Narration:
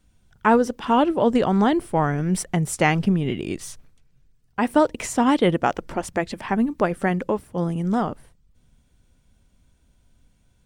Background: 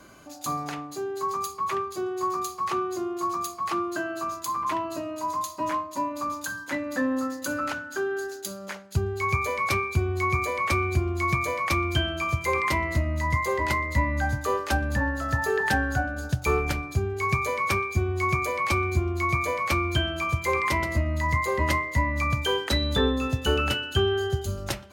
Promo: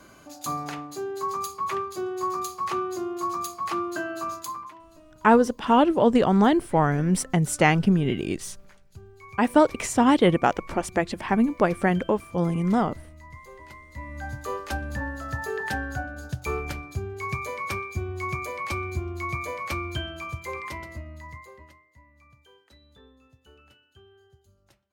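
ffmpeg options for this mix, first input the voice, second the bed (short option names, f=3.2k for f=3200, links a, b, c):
-filter_complex "[0:a]adelay=4800,volume=0dB[a];[1:a]volume=14dB,afade=t=out:st=4.35:d=0.37:silence=0.105925,afade=t=in:st=13.88:d=0.62:silence=0.188365,afade=t=out:st=19.79:d=1.95:silence=0.0501187[b];[a][b]amix=inputs=2:normalize=0"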